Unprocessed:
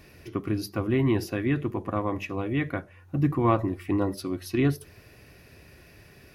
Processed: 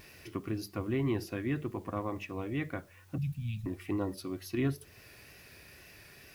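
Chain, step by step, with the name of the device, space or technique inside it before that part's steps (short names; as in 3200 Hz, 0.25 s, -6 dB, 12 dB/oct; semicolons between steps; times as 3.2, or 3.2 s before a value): 3.18–3.66 Chebyshev band-stop 210–2500 Hz, order 5; noise-reduction cassette on a plain deck (mismatched tape noise reduction encoder only; wow and flutter; white noise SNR 32 dB); gain -7.5 dB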